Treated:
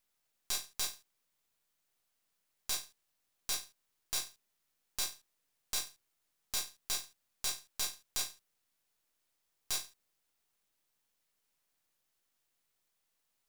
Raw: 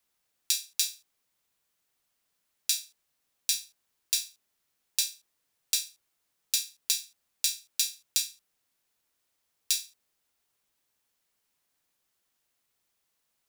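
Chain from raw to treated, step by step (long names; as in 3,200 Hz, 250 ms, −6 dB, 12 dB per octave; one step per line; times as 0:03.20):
gain on one half-wave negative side −12 dB
brickwall limiter −14.5 dBFS, peak gain reduction 10 dB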